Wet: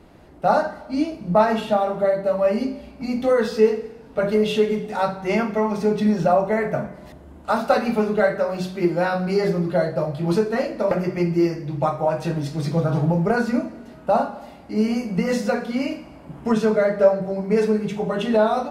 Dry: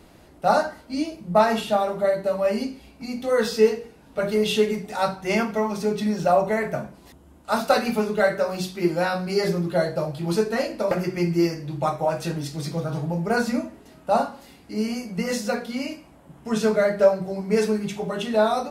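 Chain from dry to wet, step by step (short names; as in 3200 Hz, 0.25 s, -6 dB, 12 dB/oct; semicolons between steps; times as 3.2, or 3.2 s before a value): recorder AGC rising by 6.3 dB/s; high shelf 3500 Hz -11.5 dB; Schroeder reverb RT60 1.3 s, DRR 15 dB; gain +1.5 dB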